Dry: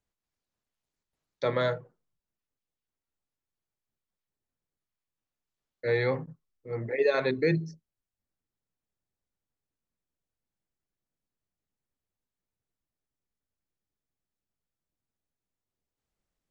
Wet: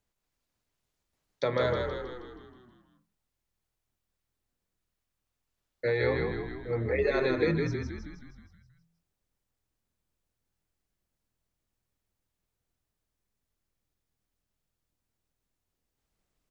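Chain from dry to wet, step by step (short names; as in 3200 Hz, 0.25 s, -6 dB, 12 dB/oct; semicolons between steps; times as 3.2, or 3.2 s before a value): compressor, threshold -29 dBFS, peak gain reduction 9.5 dB; on a send: frequency-shifting echo 0.159 s, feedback 56%, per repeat -41 Hz, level -4 dB; on the sum: gain +4 dB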